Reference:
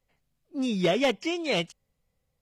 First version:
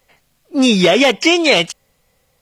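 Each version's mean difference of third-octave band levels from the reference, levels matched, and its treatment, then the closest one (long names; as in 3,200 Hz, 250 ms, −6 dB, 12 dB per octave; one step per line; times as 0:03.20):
3.5 dB: low-shelf EQ 300 Hz −11 dB
boost into a limiter +22.5 dB
level −1 dB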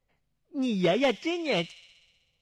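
1.5 dB: high-shelf EQ 6,500 Hz −10.5 dB
on a send: delay with a high-pass on its return 63 ms, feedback 74%, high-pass 3,600 Hz, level −12 dB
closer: second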